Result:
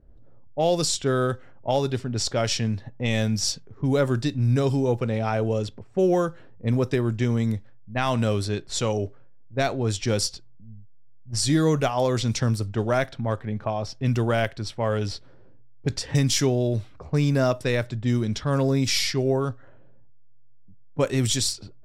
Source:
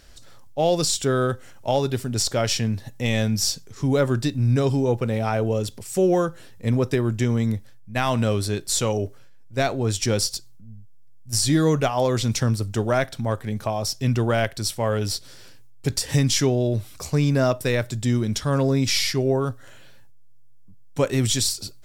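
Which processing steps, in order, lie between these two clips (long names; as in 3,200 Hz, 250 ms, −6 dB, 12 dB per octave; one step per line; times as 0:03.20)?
low-pass that shuts in the quiet parts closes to 410 Hz, open at −17 dBFS
level −1.5 dB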